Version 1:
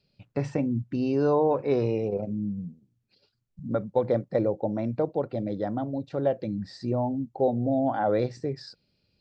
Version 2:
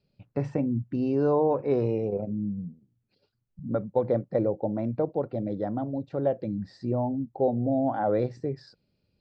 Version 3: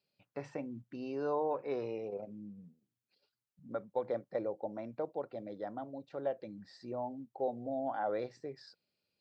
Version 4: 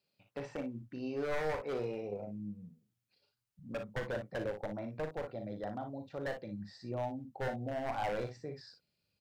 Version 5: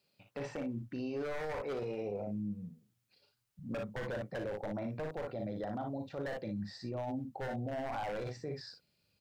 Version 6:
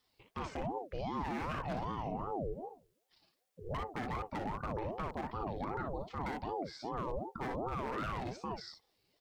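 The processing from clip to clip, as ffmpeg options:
-af "highshelf=f=2200:g=-11"
-af "highpass=f=1100:p=1,volume=0.75"
-af "aeval=exprs='0.0282*(abs(mod(val(0)/0.0282+3,4)-2)-1)':c=same,asubboost=boost=3.5:cutoff=160,aecho=1:1:39|58:0.355|0.355,volume=1.12"
-af "alimiter=level_in=4.22:limit=0.0631:level=0:latency=1:release=17,volume=0.237,volume=1.88"
-af "aeval=exprs='val(0)*sin(2*PI*440*n/s+440*0.5/2.6*sin(2*PI*2.6*n/s))':c=same,volume=1.41"

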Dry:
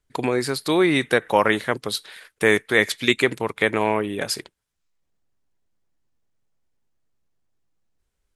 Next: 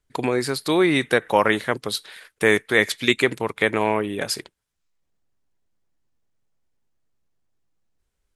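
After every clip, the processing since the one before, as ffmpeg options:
-af anull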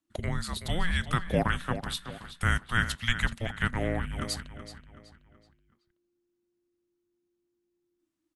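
-filter_complex "[0:a]afreqshift=-350,asplit=2[s0][s1];[s1]adelay=376,lowpass=f=4800:p=1,volume=0.282,asplit=2[s2][s3];[s3]adelay=376,lowpass=f=4800:p=1,volume=0.41,asplit=2[s4][s5];[s5]adelay=376,lowpass=f=4800:p=1,volume=0.41,asplit=2[s6][s7];[s7]adelay=376,lowpass=f=4800:p=1,volume=0.41[s8];[s0][s2][s4][s6][s8]amix=inputs=5:normalize=0,volume=0.398"

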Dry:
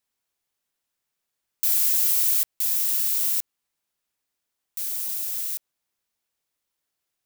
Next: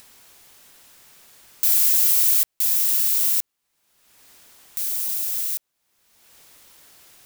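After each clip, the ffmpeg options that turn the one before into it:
-af "acompressor=mode=upward:threshold=0.0251:ratio=2.5,volume=1.5"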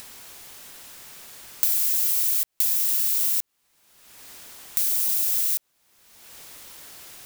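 -af "acompressor=threshold=0.0501:ratio=10,volume=2.24"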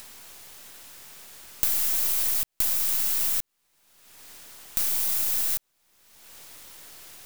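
-af "aeval=exprs='if(lt(val(0),0),0.447*val(0),val(0))':c=same"

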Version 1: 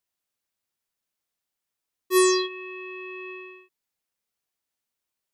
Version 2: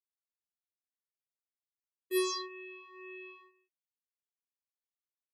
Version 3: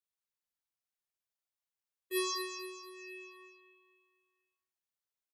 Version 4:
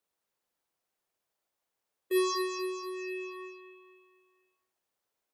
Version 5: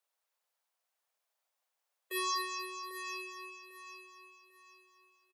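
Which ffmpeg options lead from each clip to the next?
-filter_complex "[0:a]agate=range=0.2:threshold=0.00891:ratio=16:detection=peak,asplit=2[s0][s1];[s1]afreqshift=1.9[s2];[s0][s2]amix=inputs=2:normalize=1,volume=0.376"
-filter_complex "[0:a]equalizer=f=270:t=o:w=0.71:g=-12,asplit=2[s0][s1];[s1]aecho=0:1:238|476|714|952|1190:0.355|0.163|0.0751|0.0345|0.0159[s2];[s0][s2]amix=inputs=2:normalize=0"
-af "equalizer=f=520:t=o:w=2.7:g=10.5,acompressor=threshold=0.00794:ratio=1.5,volume=1.88"
-af "highpass=f=560:w=0.5412,highpass=f=560:w=1.3066,aecho=1:1:797|1594|2391:0.282|0.0902|0.0289"

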